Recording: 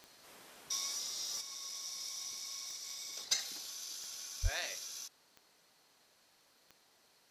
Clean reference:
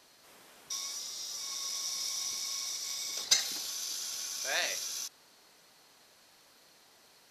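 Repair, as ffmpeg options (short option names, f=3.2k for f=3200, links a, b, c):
-filter_complex "[0:a]adeclick=t=4,asplit=3[a][b][c];[a]afade=t=out:st=4.42:d=0.02[d];[b]highpass=f=140:w=0.5412,highpass=f=140:w=1.3066,afade=t=in:st=4.42:d=0.02,afade=t=out:st=4.54:d=0.02[e];[c]afade=t=in:st=4.54:d=0.02[f];[d][e][f]amix=inputs=3:normalize=0,asetnsamples=n=441:p=0,asendcmd='1.41 volume volume 7.5dB',volume=0dB"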